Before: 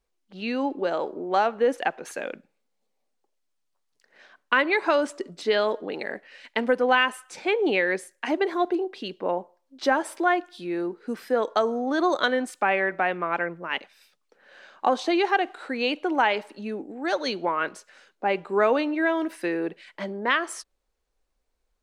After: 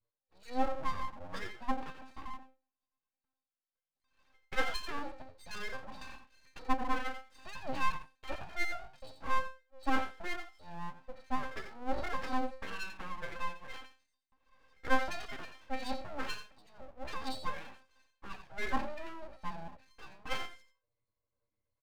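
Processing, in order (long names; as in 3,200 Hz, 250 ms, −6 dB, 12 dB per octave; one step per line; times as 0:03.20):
parametric band 140 Hz −13.5 dB 0.71 octaves
resonances in every octave C, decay 0.3 s
on a send: single-tap delay 87 ms −10.5 dB
on the sum: full-wave rectification
level +6.5 dB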